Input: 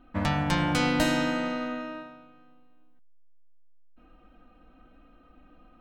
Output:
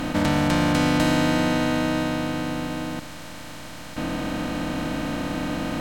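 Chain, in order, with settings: spectral levelling over time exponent 0.2; dynamic bell 280 Hz, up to +5 dB, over -34 dBFS, Q 0.77; trim -2.5 dB

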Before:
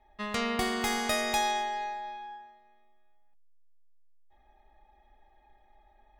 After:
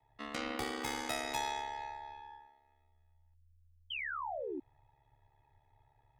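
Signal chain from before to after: painted sound fall, 3.90–4.60 s, 250–3200 Hz -31 dBFS; frequency shift +48 Hz; ring modulator 35 Hz; trim -5.5 dB

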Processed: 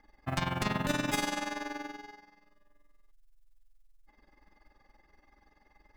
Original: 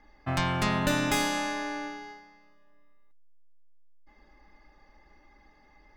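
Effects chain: short-mantissa float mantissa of 4-bit; AM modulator 21 Hz, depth 60%; trim -1.5 dB

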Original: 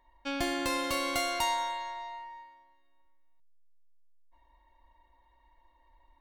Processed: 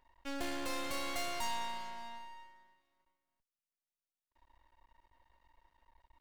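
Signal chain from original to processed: single-diode clipper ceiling -29.5 dBFS; half-wave rectifier

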